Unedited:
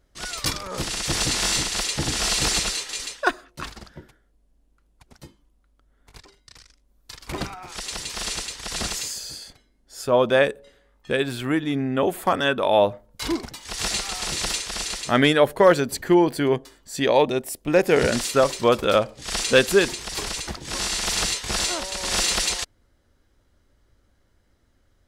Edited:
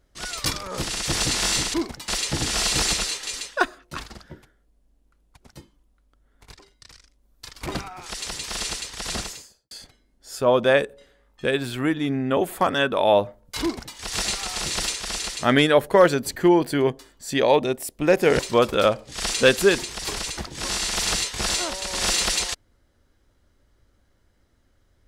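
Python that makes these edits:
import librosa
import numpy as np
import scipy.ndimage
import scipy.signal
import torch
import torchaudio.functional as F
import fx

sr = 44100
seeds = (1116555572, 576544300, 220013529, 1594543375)

y = fx.studio_fade_out(x, sr, start_s=8.73, length_s=0.64)
y = fx.edit(y, sr, fx.duplicate(start_s=13.28, length_s=0.34, to_s=1.74),
    fx.cut(start_s=18.05, length_s=0.44), tone=tone)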